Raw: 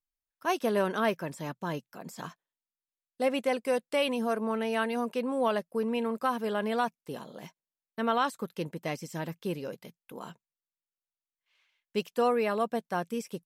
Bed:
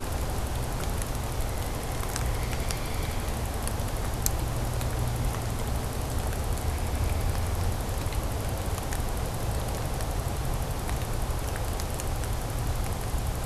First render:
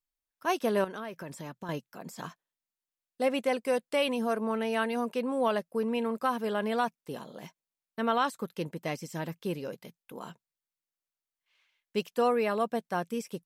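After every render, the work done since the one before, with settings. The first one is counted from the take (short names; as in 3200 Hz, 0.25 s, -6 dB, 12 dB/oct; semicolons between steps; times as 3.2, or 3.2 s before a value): 0.84–1.69 compressor, threshold -36 dBFS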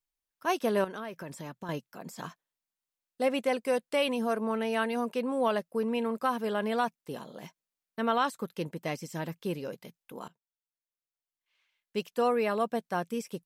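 10.28–12.46 fade in, from -19.5 dB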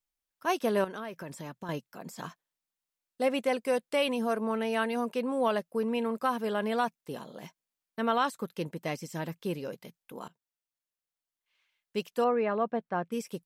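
12.24–13.12 LPF 2000 Hz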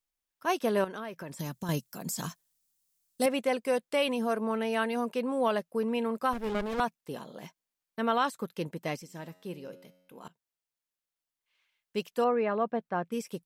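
1.39–3.26 tone controls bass +9 dB, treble +15 dB; 6.33–6.8 running maximum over 33 samples; 9.02–10.25 resonator 91 Hz, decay 1 s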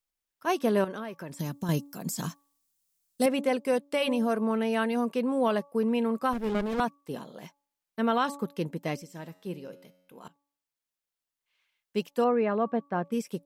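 de-hum 284.2 Hz, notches 4; dynamic EQ 220 Hz, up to +5 dB, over -43 dBFS, Q 0.75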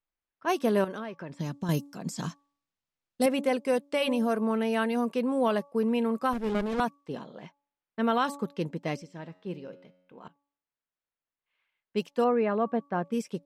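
low-pass opened by the level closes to 2400 Hz, open at -23.5 dBFS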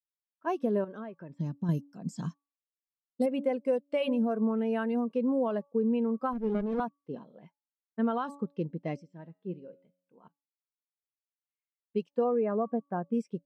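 compressor, threshold -26 dBFS, peak gain reduction 7 dB; spectral expander 1.5:1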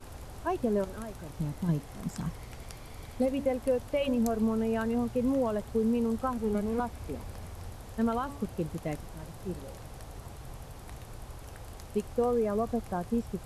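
add bed -14.5 dB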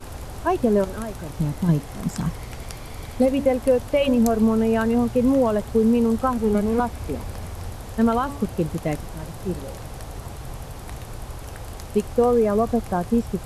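gain +9.5 dB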